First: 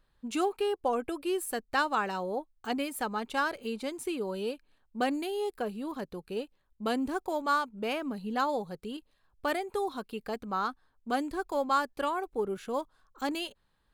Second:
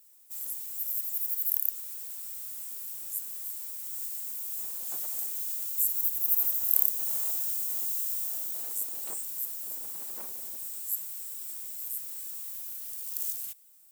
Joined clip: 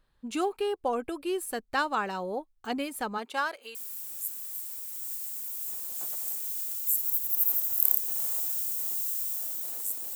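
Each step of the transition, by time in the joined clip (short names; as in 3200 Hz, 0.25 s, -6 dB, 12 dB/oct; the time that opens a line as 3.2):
first
3.17–3.75 HPF 250 Hz -> 960 Hz
3.75 switch to second from 2.66 s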